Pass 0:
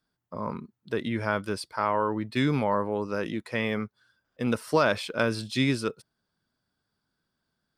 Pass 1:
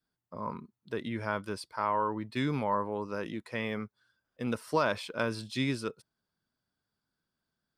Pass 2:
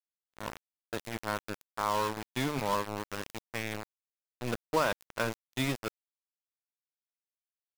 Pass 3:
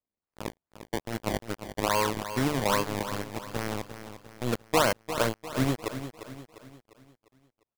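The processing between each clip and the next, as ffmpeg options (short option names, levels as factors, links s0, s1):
-af "adynamicequalizer=threshold=0.00794:dfrequency=990:dqfactor=5:tfrequency=990:tqfactor=5:attack=5:release=100:ratio=0.375:range=3:mode=boostabove:tftype=bell,volume=0.501"
-af "bandreject=f=50:t=h:w=6,bandreject=f=100:t=h:w=6,bandreject=f=150:t=h:w=6,aeval=exprs='val(0)*gte(abs(val(0)),0.0316)':c=same,agate=range=0.0224:threshold=0.00447:ratio=3:detection=peak"
-filter_complex "[0:a]asplit=2[s0][s1];[s1]adynamicsmooth=sensitivity=0.5:basefreq=1900,volume=0.891[s2];[s0][s2]amix=inputs=2:normalize=0,acrusher=samples=23:mix=1:aa=0.000001:lfo=1:lforange=23:lforate=2.4,aecho=1:1:350|700|1050|1400|1750:0.282|0.13|0.0596|0.0274|0.0126"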